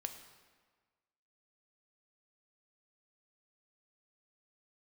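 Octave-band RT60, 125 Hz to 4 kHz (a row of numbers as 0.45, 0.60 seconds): 1.4, 1.5, 1.5, 1.5, 1.4, 1.1 seconds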